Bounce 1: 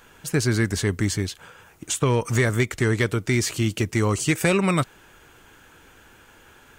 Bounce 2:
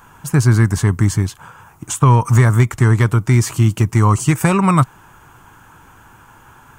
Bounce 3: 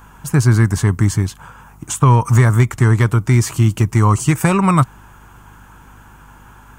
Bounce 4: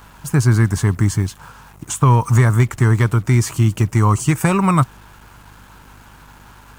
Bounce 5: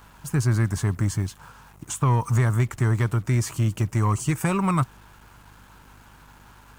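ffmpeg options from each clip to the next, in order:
-af "equalizer=f=125:t=o:w=1:g=8,equalizer=f=500:t=o:w=1:g=-8,equalizer=f=1k:t=o:w=1:g=11,equalizer=f=2k:t=o:w=1:g=-5,equalizer=f=4k:t=o:w=1:g=-8,volume=5dB"
-af "aeval=exprs='val(0)+0.00631*(sin(2*PI*50*n/s)+sin(2*PI*2*50*n/s)/2+sin(2*PI*3*50*n/s)/3+sin(2*PI*4*50*n/s)/4+sin(2*PI*5*50*n/s)/5)':c=same"
-af "acrusher=bits=6:mix=0:aa=0.5,volume=-1.5dB"
-af "asoftclip=type=tanh:threshold=-5.5dB,volume=-6.5dB"

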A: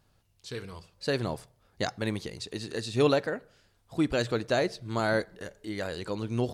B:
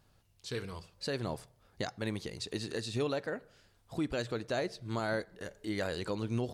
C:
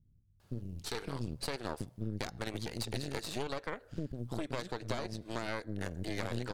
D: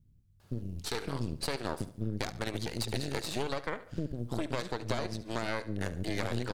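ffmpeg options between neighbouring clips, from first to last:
-af "alimiter=limit=-23.5dB:level=0:latency=1:release=474"
-filter_complex "[0:a]acrossover=split=260[a][b];[b]adelay=400[c];[a][c]amix=inputs=2:normalize=0,acompressor=threshold=-40dB:ratio=4,aeval=exprs='0.0447*(cos(1*acos(clip(val(0)/0.0447,-1,1)))-cos(1*PI/2))+0.02*(cos(4*acos(clip(val(0)/0.0447,-1,1)))-cos(4*PI/2))':c=same,volume=2dB"
-af "aecho=1:1:71|142|213:0.168|0.0621|0.023,volume=3.5dB"

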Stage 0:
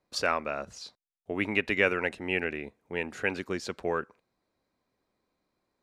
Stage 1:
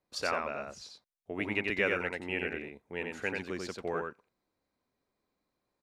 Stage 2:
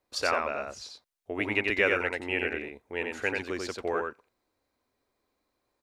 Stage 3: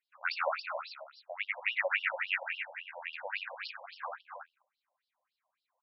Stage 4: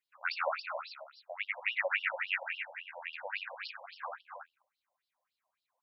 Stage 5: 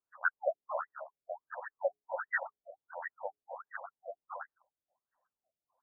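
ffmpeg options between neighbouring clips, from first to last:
-af "aecho=1:1:90:0.668,volume=-5.5dB"
-af "equalizer=f=170:w=2.6:g=-12,volume=5dB"
-filter_complex "[0:a]asplit=2[a][b];[b]aecho=0:1:141|272|330|418:0.596|0.316|0.112|0.316[c];[a][c]amix=inputs=2:normalize=0,afftfilt=real='re*between(b*sr/1024,720*pow(4000/720,0.5+0.5*sin(2*PI*3.6*pts/sr))/1.41,720*pow(4000/720,0.5+0.5*sin(2*PI*3.6*pts/sr))*1.41)':imag='im*between(b*sr/1024,720*pow(4000/720,0.5+0.5*sin(2*PI*3.6*pts/sr))/1.41,720*pow(4000/720,0.5+0.5*sin(2*PI*3.6*pts/sr))*1.41)':win_size=1024:overlap=0.75"
-af "bandreject=f=60:t=h:w=6,bandreject=f=120:t=h:w=6,bandreject=f=180:t=h:w=6,bandreject=f=240:t=h:w=6,bandreject=f=300:t=h:w=6,bandreject=f=360:t=h:w=6,bandreject=f=420:t=h:w=6,volume=-1dB"
-af "equalizer=f=2.7k:w=0.71:g=5.5,afftfilt=real='re*lt(b*sr/1024,710*pow(2000/710,0.5+0.5*sin(2*PI*1.4*pts/sr)))':imag='im*lt(b*sr/1024,710*pow(2000/710,0.5+0.5*sin(2*PI*1.4*pts/sr)))':win_size=1024:overlap=0.75,volume=3dB"

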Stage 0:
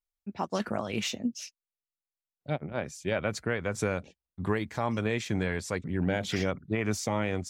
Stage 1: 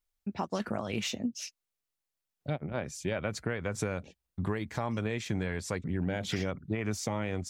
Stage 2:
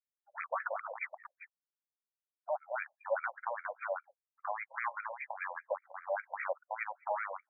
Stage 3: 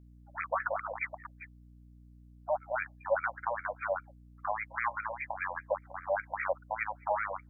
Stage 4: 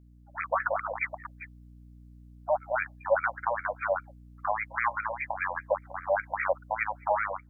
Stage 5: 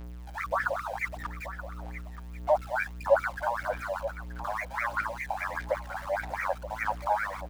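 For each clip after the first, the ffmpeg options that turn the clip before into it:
-af "lowshelf=f=160:g=4,acompressor=threshold=-38dB:ratio=2.5,volume=5dB"
-af "afftdn=nr=18:nf=-53,aeval=exprs='0.0562*(abs(mod(val(0)/0.0562+3,4)-2)-1)':c=same,afftfilt=real='re*between(b*sr/1024,720*pow(1800/720,0.5+0.5*sin(2*PI*5*pts/sr))/1.41,720*pow(1800/720,0.5+0.5*sin(2*PI*5*pts/sr))*1.41)':imag='im*between(b*sr/1024,720*pow(1800/720,0.5+0.5*sin(2*PI*5*pts/sr))/1.41,720*pow(1800/720,0.5+0.5*sin(2*PI*5*pts/sr))*1.41)':win_size=1024:overlap=0.75,volume=7.5dB"
-af "aeval=exprs='val(0)+0.00126*(sin(2*PI*60*n/s)+sin(2*PI*2*60*n/s)/2+sin(2*PI*3*60*n/s)/3+sin(2*PI*4*60*n/s)/4+sin(2*PI*5*60*n/s)/5)':c=same,volume=4dB"
-af "dynaudnorm=f=260:g=3:m=4.5dB"
-af "aeval=exprs='val(0)+0.5*0.0112*sgn(val(0))':c=same,aphaser=in_gain=1:out_gain=1:delay=1.3:decay=0.5:speed=1.6:type=sinusoidal,aecho=1:1:929:0.237,volume=-3.5dB"

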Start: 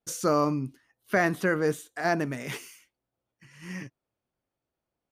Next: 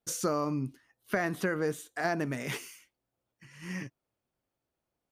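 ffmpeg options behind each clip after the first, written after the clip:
-af "acompressor=threshold=-26dB:ratio=6"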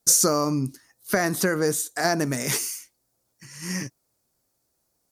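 -af "aexciter=amount=4.8:drive=8.6:freq=4.4k,aemphasis=mode=reproduction:type=cd,volume=7dB"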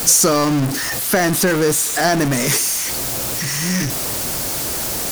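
-af "aeval=exprs='val(0)+0.5*0.106*sgn(val(0))':c=same,volume=3dB"

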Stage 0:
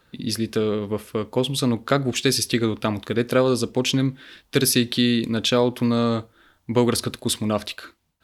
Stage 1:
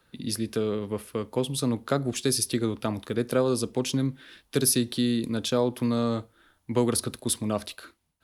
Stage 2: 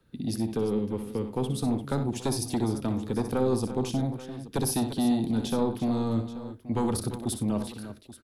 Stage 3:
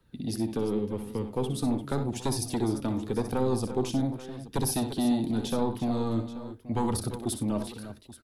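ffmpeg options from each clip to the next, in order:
-filter_complex "[0:a]equalizer=f=10k:w=4.9:g=9.5,acrossover=split=180|1500|3700[a][b][c][d];[c]acompressor=threshold=-41dB:ratio=6[e];[a][b][e][d]amix=inputs=4:normalize=0,volume=-5dB"
-filter_complex "[0:a]acrossover=split=430[a][b];[a]aeval=exprs='0.188*sin(PI/2*2.51*val(0)/0.188)':c=same[c];[c][b]amix=inputs=2:normalize=0,aecho=1:1:62|95|346|831:0.355|0.126|0.237|0.15,volume=-8dB"
-af "flanger=delay=1:depth=2.5:regen=61:speed=0.87:shape=sinusoidal,volume=4dB"

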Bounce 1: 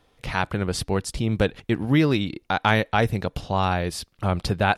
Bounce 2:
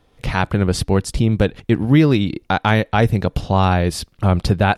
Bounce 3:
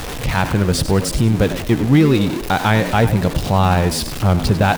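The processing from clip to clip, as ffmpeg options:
-af "lowshelf=f=440:g=6,dynaudnorm=f=110:g=3:m=6.5dB"
-filter_complex "[0:a]aeval=exprs='val(0)+0.5*0.1*sgn(val(0))':c=same,asplit=5[a][b][c][d][e];[b]adelay=97,afreqshift=71,volume=-12dB[f];[c]adelay=194,afreqshift=142,volume=-20.6dB[g];[d]adelay=291,afreqshift=213,volume=-29.3dB[h];[e]adelay=388,afreqshift=284,volume=-37.9dB[i];[a][f][g][h][i]amix=inputs=5:normalize=0,volume=-1dB"

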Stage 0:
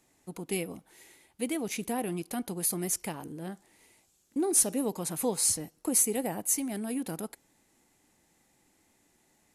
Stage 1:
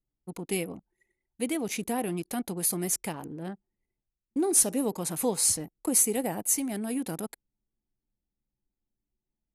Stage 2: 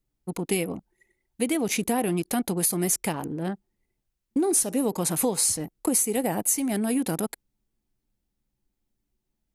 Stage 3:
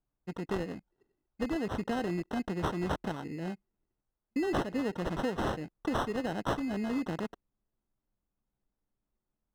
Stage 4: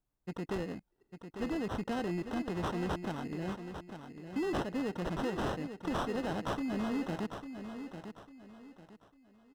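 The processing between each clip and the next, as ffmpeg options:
-af "anlmdn=0.0158,volume=2dB"
-af "acompressor=threshold=-28dB:ratio=6,volume=7.5dB"
-af "acrusher=samples=19:mix=1:aa=0.000001,aemphasis=mode=reproduction:type=75kf,volume=-7dB"
-af "asoftclip=type=tanh:threshold=-28.5dB,aecho=1:1:849|1698|2547|3396:0.355|0.114|0.0363|0.0116"

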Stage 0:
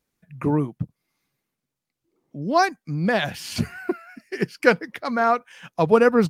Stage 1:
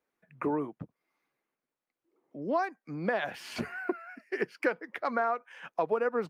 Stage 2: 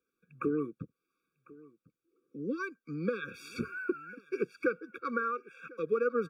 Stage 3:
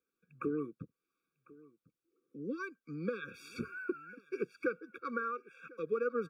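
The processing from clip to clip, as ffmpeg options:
-filter_complex "[0:a]acrossover=split=300 2400:gain=0.112 1 0.2[a][b][c];[a][b][c]amix=inputs=3:normalize=0,acompressor=threshold=-26dB:ratio=6"
-filter_complex "[0:a]acrossover=split=2000[a][b];[b]alimiter=level_in=11.5dB:limit=-24dB:level=0:latency=1:release=184,volume=-11.5dB[c];[a][c]amix=inputs=2:normalize=0,aecho=1:1:1049:0.075,afftfilt=real='re*eq(mod(floor(b*sr/1024/550),2),0)':imag='im*eq(mod(floor(b*sr/1024/550),2),0)':win_size=1024:overlap=0.75"
-af "aeval=exprs='0.133*(cos(1*acos(clip(val(0)/0.133,-1,1)))-cos(1*PI/2))+0.00106*(cos(3*acos(clip(val(0)/0.133,-1,1)))-cos(3*PI/2))':c=same,volume=-4dB"

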